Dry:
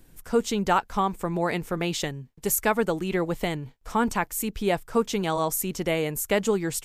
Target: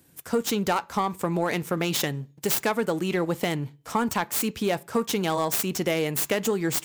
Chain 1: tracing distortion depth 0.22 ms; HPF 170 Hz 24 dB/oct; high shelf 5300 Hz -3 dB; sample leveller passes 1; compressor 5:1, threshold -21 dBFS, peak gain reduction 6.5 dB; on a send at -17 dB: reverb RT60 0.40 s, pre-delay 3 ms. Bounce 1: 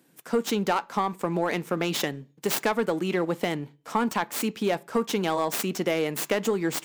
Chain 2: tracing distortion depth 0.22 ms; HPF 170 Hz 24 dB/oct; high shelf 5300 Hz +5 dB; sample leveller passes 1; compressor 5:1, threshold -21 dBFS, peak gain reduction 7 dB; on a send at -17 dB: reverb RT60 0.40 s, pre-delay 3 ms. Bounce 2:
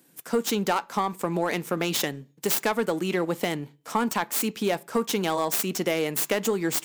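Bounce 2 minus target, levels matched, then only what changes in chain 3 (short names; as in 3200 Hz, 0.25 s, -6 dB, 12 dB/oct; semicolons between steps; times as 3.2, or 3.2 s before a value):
125 Hz band -3.0 dB
change: HPF 84 Hz 24 dB/oct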